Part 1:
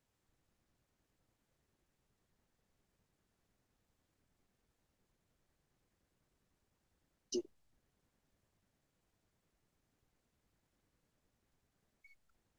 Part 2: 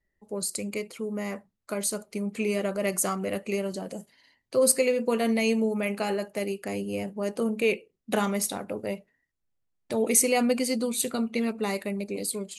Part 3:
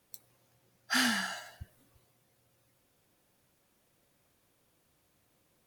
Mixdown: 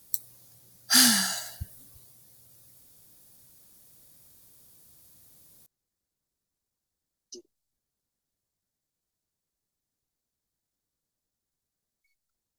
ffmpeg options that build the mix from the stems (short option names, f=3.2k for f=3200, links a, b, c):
-filter_complex "[0:a]volume=-11dB[a];[2:a]bass=f=250:g=7,treble=f=4k:g=2,volume=2.5dB[b];[a][b]amix=inputs=2:normalize=0,aexciter=amount=4.4:drive=2.5:freq=3.8k"